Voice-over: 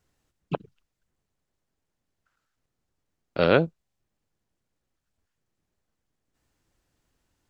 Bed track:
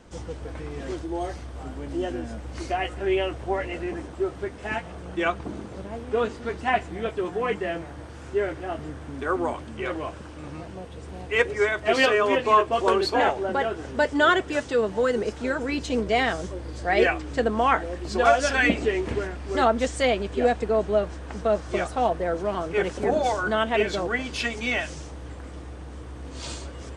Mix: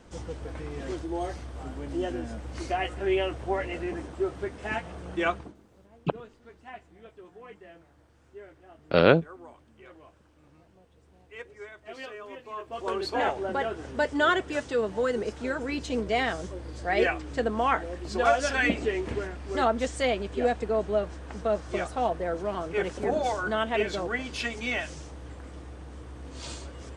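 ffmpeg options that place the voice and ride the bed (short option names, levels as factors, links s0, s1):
-filter_complex "[0:a]adelay=5550,volume=1.12[s0];[1:a]volume=5.62,afade=t=out:st=5.31:d=0.23:silence=0.112202,afade=t=in:st=12.55:d=0.8:silence=0.141254[s1];[s0][s1]amix=inputs=2:normalize=0"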